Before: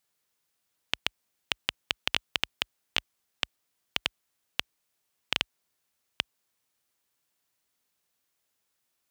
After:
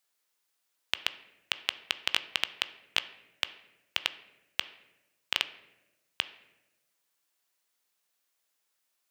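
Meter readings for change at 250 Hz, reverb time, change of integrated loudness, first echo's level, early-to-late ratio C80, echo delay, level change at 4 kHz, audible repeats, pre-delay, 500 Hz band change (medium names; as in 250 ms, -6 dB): -6.5 dB, 1.0 s, 0.0 dB, no echo, 17.0 dB, no echo, 0.0 dB, no echo, 14 ms, -2.5 dB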